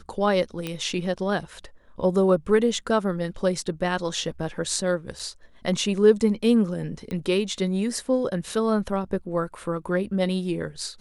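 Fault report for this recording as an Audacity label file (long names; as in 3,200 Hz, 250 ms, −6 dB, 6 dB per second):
0.670000	0.670000	click −15 dBFS
5.190000	5.200000	drop-out 5.6 ms
7.110000	7.110000	click −20 dBFS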